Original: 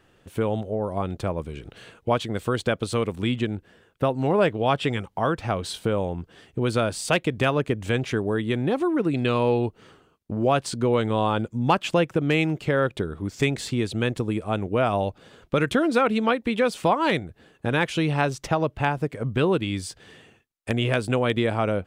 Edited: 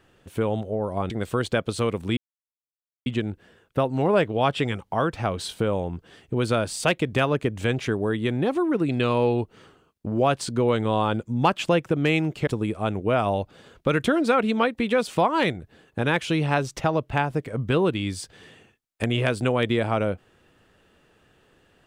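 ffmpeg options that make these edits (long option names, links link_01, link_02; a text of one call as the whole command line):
ffmpeg -i in.wav -filter_complex "[0:a]asplit=4[link_01][link_02][link_03][link_04];[link_01]atrim=end=1.102[link_05];[link_02]atrim=start=2.238:end=3.31,asetpts=PTS-STARTPTS,afade=type=out:start_time=1.068:duration=0.004:curve=hsin,apad=pad_dur=0.89[link_06];[link_03]atrim=start=3.31:end=12.722,asetpts=PTS-STARTPTS,afade=type=in:duration=0.004:curve=hsin[link_07];[link_04]atrim=start=14.138[link_08];[link_06][link_07]concat=n=2:v=0:a=1[link_09];[link_05][link_09]acrossfade=duration=0.004:curve1=hsin:curve2=hsin[link_10];[link_10][link_08]acrossfade=duration=0.004:curve1=hsin:curve2=hsin" out.wav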